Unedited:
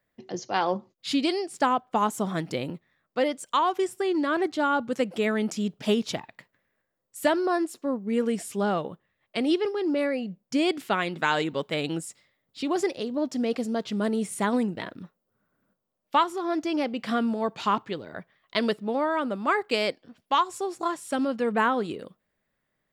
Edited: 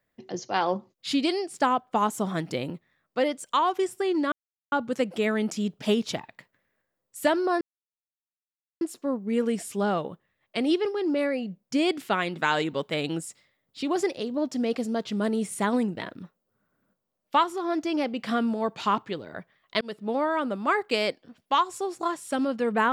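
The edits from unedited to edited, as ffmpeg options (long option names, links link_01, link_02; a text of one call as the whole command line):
ffmpeg -i in.wav -filter_complex "[0:a]asplit=5[link_01][link_02][link_03][link_04][link_05];[link_01]atrim=end=4.32,asetpts=PTS-STARTPTS,afade=type=out:start_time=4.316:duration=0.004:curve=hsin[link_06];[link_02]atrim=start=4.32:end=4.72,asetpts=PTS-STARTPTS,volume=0[link_07];[link_03]atrim=start=4.72:end=7.61,asetpts=PTS-STARTPTS,afade=type=in:duration=0.004:curve=hsin,afade=type=out:start_time=2.886:duration=0.004:curve=hsin,apad=pad_dur=1.2[link_08];[link_04]atrim=start=7.61:end=18.61,asetpts=PTS-STARTPTS,afade=type=in:duration=0.004:curve=hsin,afade=type=out:start_time=10.996:duration=0.004:curve=hsin[link_09];[link_05]atrim=start=18.61,asetpts=PTS-STARTPTS,afade=type=in:duration=0.29[link_10];[link_06][link_07][link_08][link_09][link_10]concat=n=5:v=0:a=1" out.wav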